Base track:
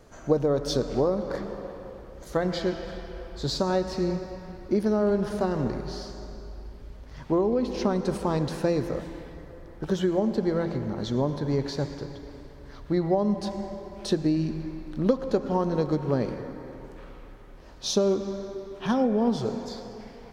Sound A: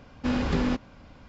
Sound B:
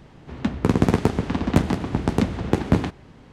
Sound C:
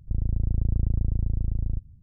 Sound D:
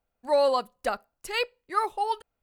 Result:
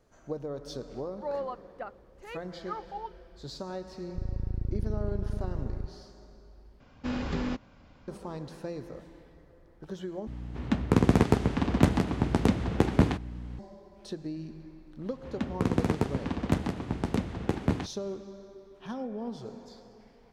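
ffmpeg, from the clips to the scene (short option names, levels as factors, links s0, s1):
-filter_complex "[2:a]asplit=2[s0][s1];[0:a]volume=0.224[s2];[4:a]lowpass=1800[s3];[3:a]lowpass=f=420:t=q:w=2.8[s4];[s0]aeval=exprs='val(0)+0.02*(sin(2*PI*60*n/s)+sin(2*PI*2*60*n/s)/2+sin(2*PI*3*60*n/s)/3+sin(2*PI*4*60*n/s)/4+sin(2*PI*5*60*n/s)/5)':c=same[s5];[s2]asplit=3[s6][s7][s8];[s6]atrim=end=6.804[s9];[1:a]atrim=end=1.28,asetpts=PTS-STARTPTS,volume=0.501[s10];[s7]atrim=start=8.076:end=10.274[s11];[s5]atrim=end=3.32,asetpts=PTS-STARTPTS,volume=0.668[s12];[s8]atrim=start=13.586[s13];[s3]atrim=end=2.42,asetpts=PTS-STARTPTS,volume=0.266,afade=t=in:d=0.004:c=hsin,afade=t=out:st=2.416:d=0.004:c=hsin,adelay=940[s14];[s4]atrim=end=2.02,asetpts=PTS-STARTPTS,volume=0.398,afade=t=in:d=0.004:c=hsin,afade=t=out:st=2.016:d=0.004:c=hsin,adelay=4070[s15];[s1]atrim=end=3.32,asetpts=PTS-STARTPTS,volume=0.376,afade=t=in:d=0.1,afade=t=out:st=3.22:d=0.1,adelay=14960[s16];[s9][s10]acrossfade=d=0.004:c1=hsin:c2=hsin[s17];[s17][s11]acrossfade=d=0.004:c1=hsin:c2=hsin[s18];[s18][s12]acrossfade=d=0.004:c1=hsin:c2=hsin[s19];[s19][s13]acrossfade=d=0.004:c1=hsin:c2=hsin[s20];[s20][s14][s15][s16]amix=inputs=4:normalize=0"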